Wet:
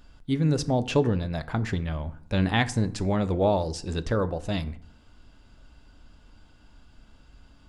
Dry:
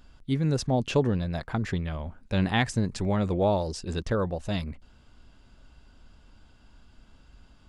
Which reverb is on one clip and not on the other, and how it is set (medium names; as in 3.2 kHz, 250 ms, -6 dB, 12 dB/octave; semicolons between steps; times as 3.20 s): FDN reverb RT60 0.63 s, low-frequency decay 1.2×, high-frequency decay 0.6×, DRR 12 dB; trim +1 dB